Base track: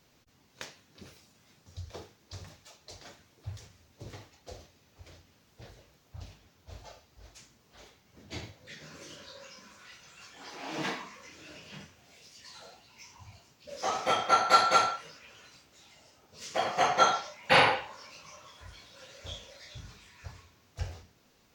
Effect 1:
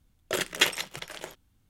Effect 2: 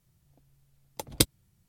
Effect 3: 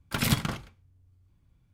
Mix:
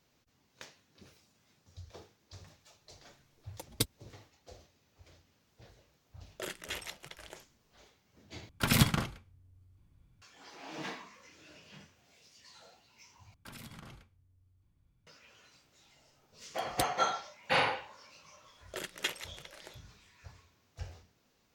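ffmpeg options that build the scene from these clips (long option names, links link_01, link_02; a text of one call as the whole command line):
ffmpeg -i bed.wav -i cue0.wav -i cue1.wav -i cue2.wav -filter_complex "[2:a]asplit=2[link_01][link_02];[1:a]asplit=2[link_03][link_04];[3:a]asplit=2[link_05][link_06];[0:a]volume=-7dB[link_07];[link_01]asplit=2[link_08][link_09];[link_09]adelay=3.7,afreqshift=3[link_10];[link_08][link_10]amix=inputs=2:normalize=1[link_11];[link_03]alimiter=limit=-17dB:level=0:latency=1:release=21[link_12];[link_06]acompressor=threshold=-39dB:ratio=10:attack=3.4:release=50:knee=1:detection=rms[link_13];[link_07]asplit=3[link_14][link_15][link_16];[link_14]atrim=end=8.494[link_17];[link_05]atrim=end=1.73[link_18];[link_15]atrim=start=10.216:end=13.344[link_19];[link_13]atrim=end=1.73,asetpts=PTS-STARTPTS,volume=-6.5dB[link_20];[link_16]atrim=start=15.066[link_21];[link_11]atrim=end=1.68,asetpts=PTS-STARTPTS,volume=-5.5dB,afade=type=in:duration=0.004:curve=hsin,afade=type=out:start_time=1.676:duration=0.004:curve=hsin,adelay=2600[link_22];[link_12]atrim=end=1.69,asetpts=PTS-STARTPTS,volume=-10dB,afade=type=in:duration=0.004:curve=hsin,afade=type=out:start_time=1.686:duration=0.004:curve=hsin,adelay=6090[link_23];[link_02]atrim=end=1.68,asetpts=PTS-STARTPTS,volume=-12.5dB,afade=type=in:duration=0.004:curve=hsin,afade=type=out:start_time=1.676:duration=0.004:curve=hsin,adelay=15590[link_24];[link_04]atrim=end=1.69,asetpts=PTS-STARTPTS,volume=-12dB,afade=type=in:duration=0.004:curve=hsin,afade=type=out:start_time=1.686:duration=0.004:curve=hsin,adelay=18430[link_25];[link_17][link_18]acrossfade=duration=0.004:curve1=hsin:curve2=hsin[link_26];[link_26][link_19]acrossfade=duration=0.004:curve1=hsin:curve2=hsin[link_27];[link_27][link_20]acrossfade=duration=0.004:curve1=hsin:curve2=hsin[link_28];[link_28][link_21]acrossfade=duration=0.004:curve1=hsin:curve2=hsin[link_29];[link_29][link_22][link_23][link_24][link_25]amix=inputs=5:normalize=0" out.wav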